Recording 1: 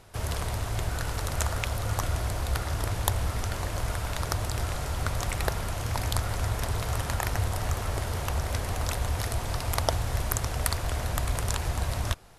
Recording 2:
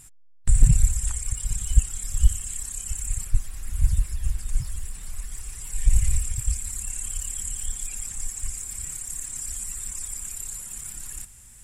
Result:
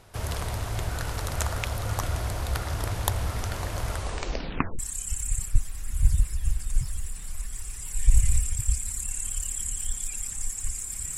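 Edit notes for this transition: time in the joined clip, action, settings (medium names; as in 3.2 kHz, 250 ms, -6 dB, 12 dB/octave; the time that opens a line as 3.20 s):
recording 1
3.89 s: tape stop 0.90 s
4.79 s: go over to recording 2 from 2.58 s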